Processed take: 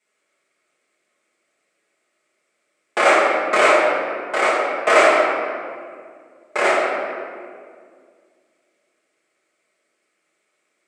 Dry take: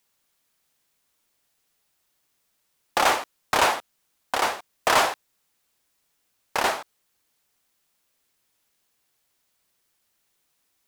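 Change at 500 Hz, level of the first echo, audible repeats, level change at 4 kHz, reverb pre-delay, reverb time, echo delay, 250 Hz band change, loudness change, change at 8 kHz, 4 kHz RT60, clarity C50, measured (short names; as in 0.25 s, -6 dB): +13.0 dB, none, none, 0.0 dB, 5 ms, 2.1 s, none, +10.0 dB, +6.5 dB, -1.0 dB, 1.2 s, 0.0 dB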